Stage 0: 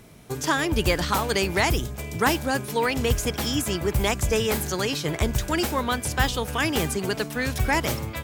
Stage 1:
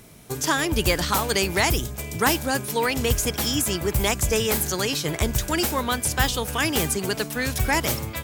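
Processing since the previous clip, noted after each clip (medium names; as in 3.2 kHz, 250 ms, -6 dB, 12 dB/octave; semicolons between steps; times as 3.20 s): treble shelf 5.1 kHz +7.5 dB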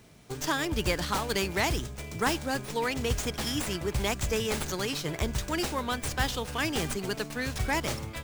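sliding maximum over 3 samples; trim -6.5 dB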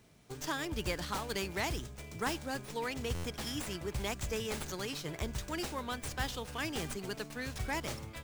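buffer glitch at 3.14 s, samples 512, times 8; trim -7.5 dB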